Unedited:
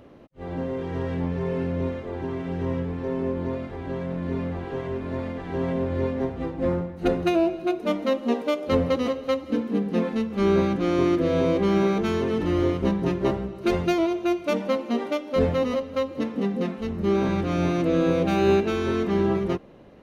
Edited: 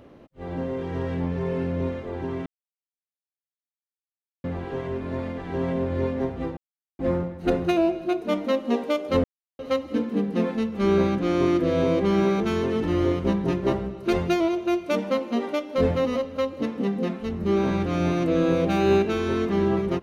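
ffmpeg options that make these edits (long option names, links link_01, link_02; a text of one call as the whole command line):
ffmpeg -i in.wav -filter_complex "[0:a]asplit=6[link_01][link_02][link_03][link_04][link_05][link_06];[link_01]atrim=end=2.46,asetpts=PTS-STARTPTS,afade=type=out:start_time=2.456:duration=0.004:curve=hsin[link_07];[link_02]atrim=start=2.46:end=4.44,asetpts=PTS-STARTPTS,volume=0[link_08];[link_03]atrim=start=4.44:end=6.57,asetpts=PTS-STARTPTS,afade=type=in:duration=0.004:curve=hsin,afade=type=out:start_time=2.126:duration=0.004:curve=hsin,apad=pad_dur=0.42[link_09];[link_04]atrim=start=6.57:end=8.82,asetpts=PTS-STARTPTS,afade=type=in:duration=0.004:curve=hsin,afade=type=out:start_time=2.246:duration=0.004:curve=hsin[link_10];[link_05]atrim=start=8.82:end=9.17,asetpts=PTS-STARTPTS,volume=0[link_11];[link_06]atrim=start=9.17,asetpts=PTS-STARTPTS,afade=type=in:duration=0.004:curve=hsin[link_12];[link_07][link_08][link_09][link_10][link_11][link_12]concat=n=6:v=0:a=1" out.wav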